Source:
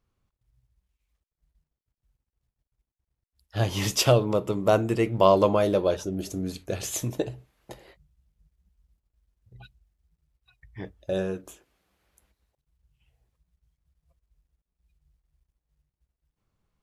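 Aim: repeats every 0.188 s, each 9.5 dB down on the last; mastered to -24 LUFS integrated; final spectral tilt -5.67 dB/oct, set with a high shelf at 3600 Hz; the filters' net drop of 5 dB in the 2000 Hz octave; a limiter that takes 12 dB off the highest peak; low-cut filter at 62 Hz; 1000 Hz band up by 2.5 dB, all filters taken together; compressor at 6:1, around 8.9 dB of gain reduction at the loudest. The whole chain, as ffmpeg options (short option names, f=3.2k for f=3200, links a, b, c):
-af "highpass=62,equalizer=f=1k:t=o:g=5,equalizer=f=2k:t=o:g=-7,highshelf=f=3.6k:g=-6,acompressor=threshold=-22dB:ratio=6,alimiter=limit=-21dB:level=0:latency=1,aecho=1:1:188|376|564|752:0.335|0.111|0.0365|0.012,volume=8.5dB"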